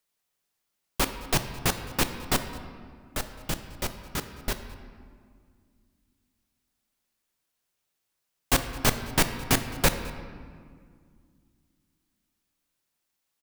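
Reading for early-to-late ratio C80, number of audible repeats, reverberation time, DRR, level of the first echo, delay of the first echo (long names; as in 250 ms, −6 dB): 10.5 dB, 1, 2.0 s, 8.0 dB, −21.5 dB, 213 ms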